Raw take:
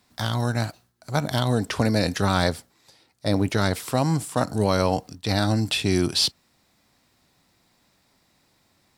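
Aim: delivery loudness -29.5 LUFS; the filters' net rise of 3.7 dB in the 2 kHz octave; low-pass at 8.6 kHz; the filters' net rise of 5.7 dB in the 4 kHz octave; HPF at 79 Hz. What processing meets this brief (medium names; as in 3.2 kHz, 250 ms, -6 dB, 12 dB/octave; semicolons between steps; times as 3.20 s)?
high-pass 79 Hz; low-pass 8.6 kHz; peaking EQ 2 kHz +3.5 dB; peaking EQ 4 kHz +6 dB; trim -7.5 dB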